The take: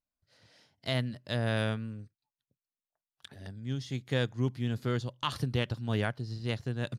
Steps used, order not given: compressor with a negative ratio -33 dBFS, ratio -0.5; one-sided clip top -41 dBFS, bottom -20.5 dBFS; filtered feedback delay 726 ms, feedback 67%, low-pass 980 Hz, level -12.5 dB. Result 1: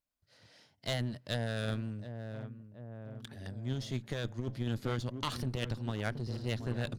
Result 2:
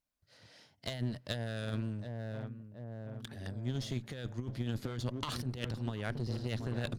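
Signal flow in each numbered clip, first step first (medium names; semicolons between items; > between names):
filtered feedback delay > one-sided clip > compressor with a negative ratio; filtered feedback delay > compressor with a negative ratio > one-sided clip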